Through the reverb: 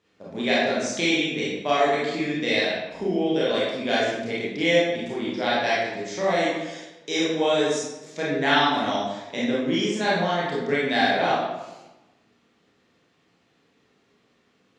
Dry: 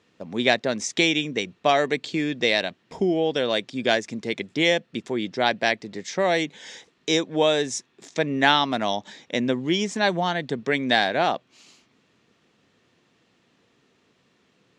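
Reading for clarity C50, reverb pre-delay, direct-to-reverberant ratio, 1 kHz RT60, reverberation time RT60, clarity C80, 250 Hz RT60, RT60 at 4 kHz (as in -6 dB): -1.0 dB, 24 ms, -8.0 dB, 1.0 s, 1.1 s, 2.5 dB, 1.2 s, 0.70 s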